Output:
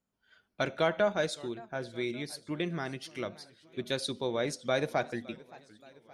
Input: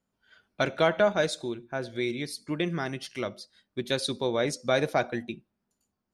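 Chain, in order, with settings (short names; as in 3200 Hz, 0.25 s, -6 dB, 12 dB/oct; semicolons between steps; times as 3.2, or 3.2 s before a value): warbling echo 0.569 s, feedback 58%, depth 185 cents, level -21.5 dB; gain -4.5 dB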